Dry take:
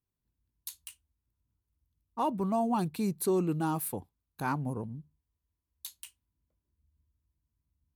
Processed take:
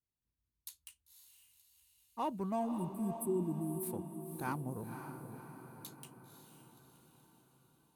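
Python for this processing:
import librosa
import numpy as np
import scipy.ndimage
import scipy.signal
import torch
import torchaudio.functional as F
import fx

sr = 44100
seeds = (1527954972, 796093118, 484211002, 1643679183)

y = fx.cheby_harmonics(x, sr, harmonics=(7,), levels_db=(-32,), full_scale_db=-18.5)
y = fx.spec_erase(y, sr, start_s=2.69, length_s=1.13, low_hz=400.0, high_hz=7600.0)
y = fx.echo_diffused(y, sr, ms=532, feedback_pct=55, wet_db=-8.0)
y = F.gain(torch.from_numpy(y), -6.5).numpy()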